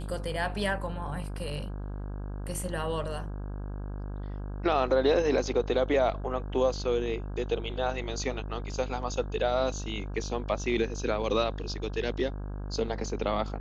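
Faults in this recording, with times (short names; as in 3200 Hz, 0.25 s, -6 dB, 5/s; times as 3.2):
buzz 50 Hz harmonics 33 -36 dBFS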